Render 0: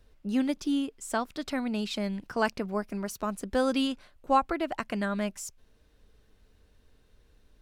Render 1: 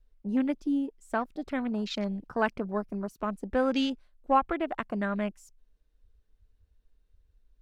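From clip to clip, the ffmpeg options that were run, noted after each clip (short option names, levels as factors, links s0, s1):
-af "afwtdn=0.01"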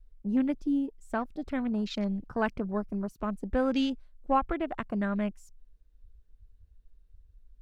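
-af "lowshelf=f=170:g=11.5,volume=0.708"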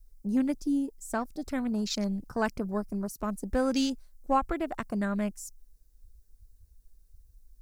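-af "aexciter=amount=5.1:drive=6.7:freq=4600"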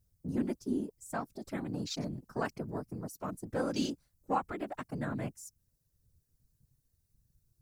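-af "highpass=f=99:p=1,afftfilt=real='hypot(re,im)*cos(2*PI*random(0))':imag='hypot(re,im)*sin(2*PI*random(1))':win_size=512:overlap=0.75"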